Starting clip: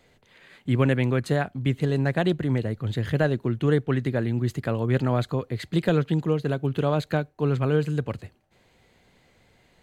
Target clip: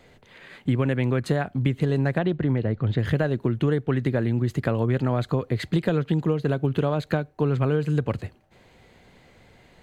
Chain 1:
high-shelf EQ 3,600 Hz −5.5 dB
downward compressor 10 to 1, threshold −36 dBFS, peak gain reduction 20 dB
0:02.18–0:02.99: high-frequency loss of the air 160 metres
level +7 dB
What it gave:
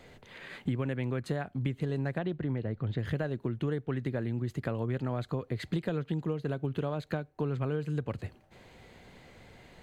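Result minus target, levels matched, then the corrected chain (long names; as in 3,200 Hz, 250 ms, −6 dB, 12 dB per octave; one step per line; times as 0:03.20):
downward compressor: peak gain reduction +9.5 dB
high-shelf EQ 3,600 Hz −5.5 dB
downward compressor 10 to 1, threshold −25.5 dBFS, peak gain reduction 10.5 dB
0:02.18–0:02.99: high-frequency loss of the air 160 metres
level +7 dB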